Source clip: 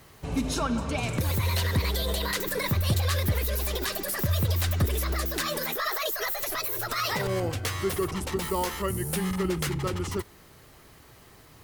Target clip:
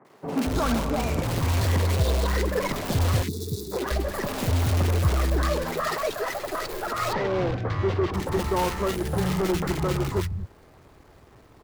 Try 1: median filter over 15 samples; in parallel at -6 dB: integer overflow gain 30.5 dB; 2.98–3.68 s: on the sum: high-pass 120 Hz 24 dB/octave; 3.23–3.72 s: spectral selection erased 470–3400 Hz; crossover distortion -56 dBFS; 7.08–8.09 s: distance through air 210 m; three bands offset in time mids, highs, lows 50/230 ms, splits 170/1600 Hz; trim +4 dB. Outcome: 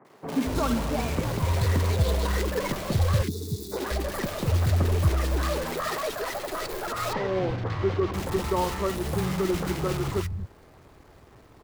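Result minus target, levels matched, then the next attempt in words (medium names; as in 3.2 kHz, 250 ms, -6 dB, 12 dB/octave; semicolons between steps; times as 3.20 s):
integer overflow: distortion +20 dB
median filter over 15 samples; in parallel at -6 dB: integer overflow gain 24 dB; 2.98–3.68 s: on the sum: high-pass 120 Hz 24 dB/octave; 3.23–3.72 s: spectral selection erased 470–3400 Hz; crossover distortion -56 dBFS; 7.08–8.09 s: distance through air 210 m; three bands offset in time mids, highs, lows 50/230 ms, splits 170/1600 Hz; trim +4 dB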